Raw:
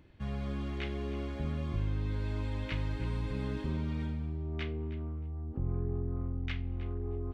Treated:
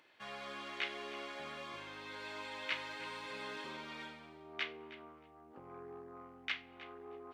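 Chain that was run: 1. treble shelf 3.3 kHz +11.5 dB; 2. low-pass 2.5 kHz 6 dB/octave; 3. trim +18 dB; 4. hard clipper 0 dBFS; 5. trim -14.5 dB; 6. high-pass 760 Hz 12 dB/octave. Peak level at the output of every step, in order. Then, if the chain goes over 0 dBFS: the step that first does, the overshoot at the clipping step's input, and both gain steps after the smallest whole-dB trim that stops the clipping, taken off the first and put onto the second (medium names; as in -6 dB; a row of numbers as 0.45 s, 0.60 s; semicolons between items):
-20.5 dBFS, -21.5 dBFS, -3.5 dBFS, -3.5 dBFS, -18.0 dBFS, -23.0 dBFS; nothing clips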